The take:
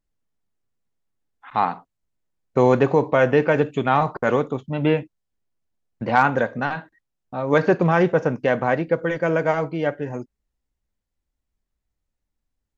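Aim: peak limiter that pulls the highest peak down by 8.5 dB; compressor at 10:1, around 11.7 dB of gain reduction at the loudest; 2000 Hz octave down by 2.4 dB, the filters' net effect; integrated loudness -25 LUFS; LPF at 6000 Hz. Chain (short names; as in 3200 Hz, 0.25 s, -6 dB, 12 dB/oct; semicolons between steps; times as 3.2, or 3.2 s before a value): LPF 6000 Hz; bell 2000 Hz -3.5 dB; compressor 10:1, threshold -24 dBFS; gain +7.5 dB; limiter -12.5 dBFS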